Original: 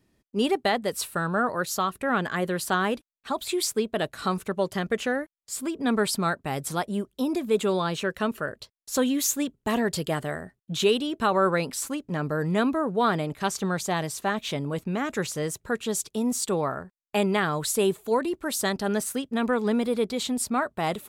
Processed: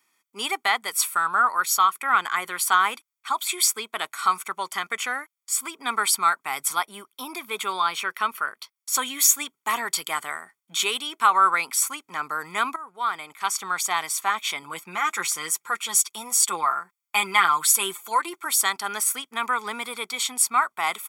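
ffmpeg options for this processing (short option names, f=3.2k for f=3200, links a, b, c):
-filter_complex "[0:a]asettb=1/sr,asplit=3[a][b][c];[a]atrim=end=6.734[d];[b]atrim=start=6.73:end=8.76,asetpts=PTS-STARTPTS,afade=t=in:d=0.004:c=qsin,afade=t=out:st=2.026:d=0.004:c=qsin,equalizer=f=7.4k:t=o:w=0.4:g=-8[e];[c]atrim=start=8.756[f];[d][e]acrossfade=d=0.004:c1=hsin:c2=qsin[g];[g][f]acrossfade=d=0.004:c1=qsin:c2=hsin,asettb=1/sr,asplit=3[h][i][j];[h]atrim=end=14.624[k];[i]atrim=start=14.62:end=18.46,asetpts=PTS-STARTPTS,afade=t=in:d=0.004:c=qsin,afade=t=out:st=3.836:d=0.004:c=qsin,aecho=1:1:5.8:0.65,atrim=end_sample=169344[l];[j]atrim=start=18.456[m];[k][l]acrossfade=d=0.004:c1=hsin:c2=qsin[n];[n][m]acrossfade=d=0.004:c1=qsin:c2=hsin,asplit=2[o][p];[o]atrim=end=12.76,asetpts=PTS-STARTPTS,afade=t=out:st=12.756:d=0.004:c=hsin:silence=0.149624[q];[p]atrim=start=12.76,asetpts=PTS-STARTPTS,afade=t=in:d=1.05:silence=0.149624[r];[q][r]concat=n=2:v=0:a=1,highpass=1.2k,equalizer=f=4.1k:t=o:w=0.98:g=-6.5,aecho=1:1:0.9:0.68,volume=8.5dB"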